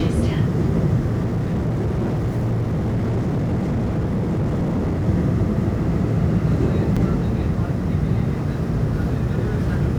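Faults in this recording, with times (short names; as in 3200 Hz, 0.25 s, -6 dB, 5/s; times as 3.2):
1.24–5.08 clipped -18 dBFS
6.96–6.97 gap 5.4 ms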